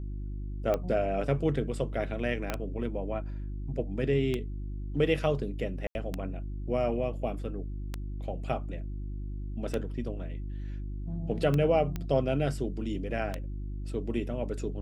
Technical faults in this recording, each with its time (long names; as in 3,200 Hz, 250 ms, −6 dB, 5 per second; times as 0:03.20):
mains hum 50 Hz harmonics 7 −36 dBFS
scratch tick 33 1/3 rpm −17 dBFS
0:02.50: click −16 dBFS
0:05.87–0:05.95: drop-out 81 ms
0:11.96: click −20 dBFS